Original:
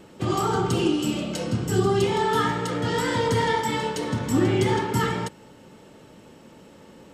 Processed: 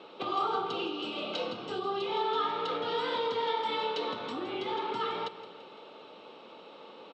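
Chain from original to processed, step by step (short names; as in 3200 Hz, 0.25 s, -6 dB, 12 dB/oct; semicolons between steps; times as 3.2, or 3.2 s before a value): compressor, threshold -29 dBFS, peak gain reduction 12.5 dB; speaker cabinet 430–4100 Hz, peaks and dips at 450 Hz +4 dB, 770 Hz +4 dB, 1200 Hz +7 dB, 1800 Hz -9 dB, 2600 Hz +4 dB, 3800 Hz +10 dB; feedback echo 0.169 s, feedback 55%, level -15 dB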